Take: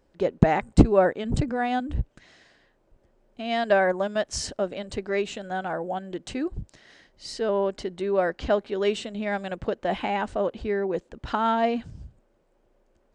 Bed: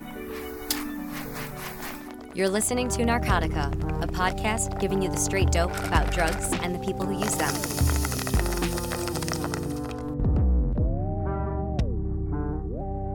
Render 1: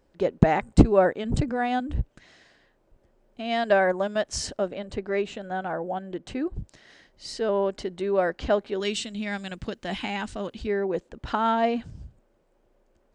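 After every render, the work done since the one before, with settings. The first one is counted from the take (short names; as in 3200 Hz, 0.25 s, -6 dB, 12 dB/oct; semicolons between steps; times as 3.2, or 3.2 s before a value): 4.68–6.56 high shelf 3800 Hz -9 dB; 8.8–10.67 EQ curve 240 Hz 0 dB, 550 Hz -10 dB, 4900 Hz +7 dB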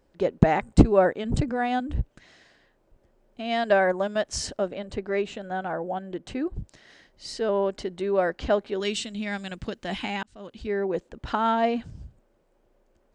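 10.23–10.81 fade in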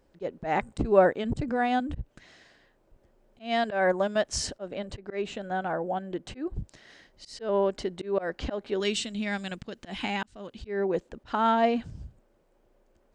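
auto swell 0.159 s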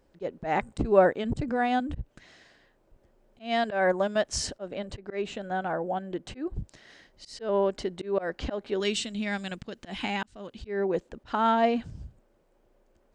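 nothing audible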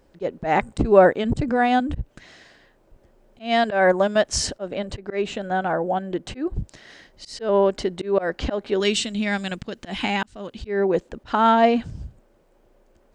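gain +7 dB; limiter -3 dBFS, peak gain reduction 1.5 dB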